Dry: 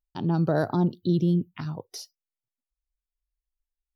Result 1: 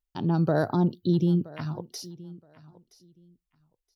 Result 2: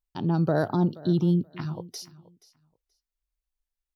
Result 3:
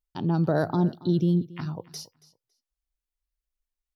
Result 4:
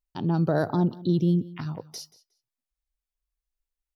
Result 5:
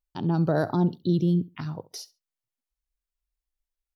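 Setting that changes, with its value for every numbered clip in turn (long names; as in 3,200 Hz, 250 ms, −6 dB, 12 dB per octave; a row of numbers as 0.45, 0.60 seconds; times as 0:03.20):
repeating echo, delay time: 972, 478, 278, 181, 68 milliseconds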